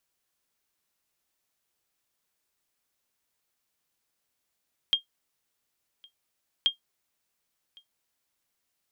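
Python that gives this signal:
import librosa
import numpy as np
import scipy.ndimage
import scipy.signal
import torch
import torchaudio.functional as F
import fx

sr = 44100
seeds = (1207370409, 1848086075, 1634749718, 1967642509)

y = fx.sonar_ping(sr, hz=3220.0, decay_s=0.12, every_s=1.73, pings=2, echo_s=1.11, echo_db=-28.5, level_db=-14.0)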